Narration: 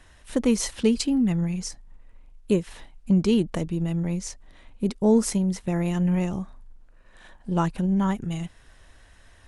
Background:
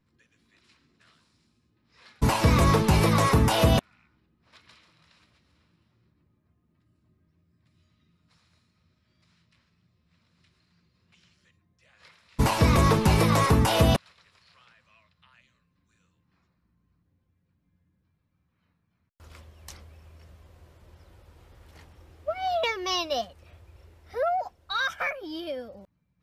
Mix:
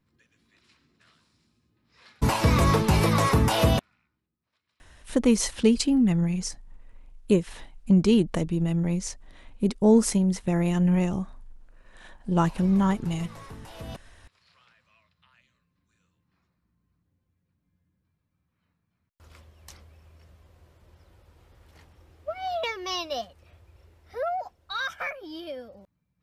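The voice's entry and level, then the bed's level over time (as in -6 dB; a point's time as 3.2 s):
4.80 s, +1.0 dB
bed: 3.69 s -0.5 dB
4.59 s -23 dB
13.72 s -23 dB
14.47 s -3 dB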